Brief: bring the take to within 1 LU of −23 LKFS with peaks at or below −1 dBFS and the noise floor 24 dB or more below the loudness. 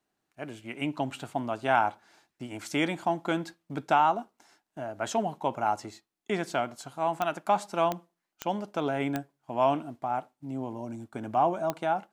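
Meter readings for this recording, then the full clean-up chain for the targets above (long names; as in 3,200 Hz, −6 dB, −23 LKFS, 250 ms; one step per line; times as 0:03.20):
number of clicks 5; integrated loudness −30.5 LKFS; sample peak −10.5 dBFS; target loudness −23.0 LKFS
→ click removal
level +7.5 dB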